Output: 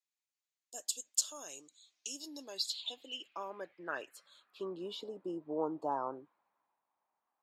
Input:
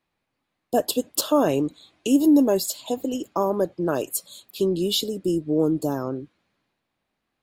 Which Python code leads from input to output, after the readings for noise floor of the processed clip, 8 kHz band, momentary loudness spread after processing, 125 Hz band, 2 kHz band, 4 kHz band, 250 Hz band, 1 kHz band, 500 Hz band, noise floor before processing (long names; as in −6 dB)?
below −85 dBFS, −7.5 dB, 14 LU, −26.5 dB, −7.5 dB, −10.5 dB, −24.5 dB, −11.5 dB, −19.0 dB, −80 dBFS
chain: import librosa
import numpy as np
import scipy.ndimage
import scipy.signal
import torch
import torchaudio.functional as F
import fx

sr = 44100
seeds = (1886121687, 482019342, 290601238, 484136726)

y = fx.high_shelf(x, sr, hz=8400.0, db=-7.5)
y = fx.filter_sweep_bandpass(y, sr, from_hz=6900.0, to_hz=930.0, start_s=1.78, end_s=5.05, q=3.9)
y = y * 10.0 ** (2.5 / 20.0)